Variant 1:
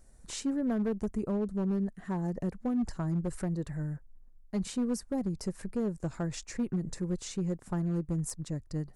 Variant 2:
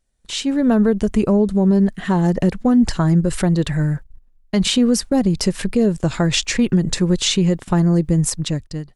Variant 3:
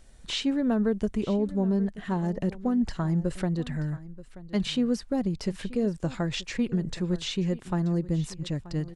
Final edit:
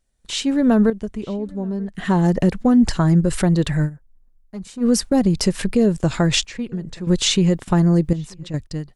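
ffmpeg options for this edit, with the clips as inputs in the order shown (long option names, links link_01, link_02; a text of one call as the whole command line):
ffmpeg -i take0.wav -i take1.wav -i take2.wav -filter_complex "[2:a]asplit=3[link_01][link_02][link_03];[1:a]asplit=5[link_04][link_05][link_06][link_07][link_08];[link_04]atrim=end=0.902[link_09];[link_01]atrim=start=0.898:end=1.952[link_10];[link_05]atrim=start=1.948:end=3.9[link_11];[0:a]atrim=start=3.84:end=4.86[link_12];[link_06]atrim=start=4.8:end=6.452[link_13];[link_02]atrim=start=6.448:end=7.072[link_14];[link_07]atrim=start=7.068:end=8.132[link_15];[link_03]atrim=start=8.128:end=8.542[link_16];[link_08]atrim=start=8.538[link_17];[link_09][link_10]acrossfade=duration=0.004:curve1=hsin:curve2=hsin[link_18];[link_18][link_11]acrossfade=duration=0.004:curve1=hsin:curve2=hsin[link_19];[link_19][link_12]acrossfade=duration=0.06:curve1=tri:curve2=tri[link_20];[link_20][link_13]acrossfade=duration=0.06:curve1=tri:curve2=tri[link_21];[link_21][link_14]acrossfade=duration=0.004:curve1=hsin:curve2=hsin[link_22];[link_22][link_15]acrossfade=duration=0.004:curve1=hsin:curve2=hsin[link_23];[link_23][link_16]acrossfade=duration=0.004:curve1=hsin:curve2=hsin[link_24];[link_24][link_17]acrossfade=duration=0.004:curve1=hsin:curve2=hsin" out.wav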